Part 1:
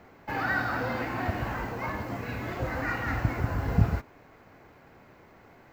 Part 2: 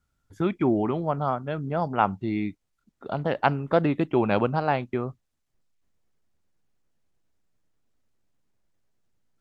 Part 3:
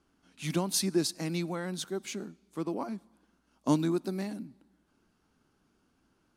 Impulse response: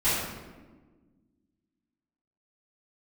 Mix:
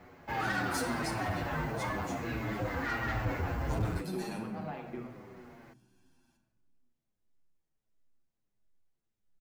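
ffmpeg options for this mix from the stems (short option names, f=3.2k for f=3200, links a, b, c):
-filter_complex "[0:a]volume=2dB[a];[1:a]acompressor=threshold=-27dB:ratio=6,volume=-9dB,asplit=2[b][c];[c]volume=-15dB[d];[2:a]highshelf=f=2.5k:g=9,aecho=1:1:1.2:0.65,volume=-4.5dB,afade=t=in:st=3.8:d=0.3:silence=0.281838,asplit=2[e][f];[f]volume=-15.5dB[g];[3:a]atrim=start_sample=2205[h];[d][g]amix=inputs=2:normalize=0[i];[i][h]afir=irnorm=-1:irlink=0[j];[a][b][e][j]amix=inputs=4:normalize=0,asoftclip=type=tanh:threshold=-24.5dB,asplit=2[k][l];[l]adelay=7.7,afreqshift=-1.5[m];[k][m]amix=inputs=2:normalize=1"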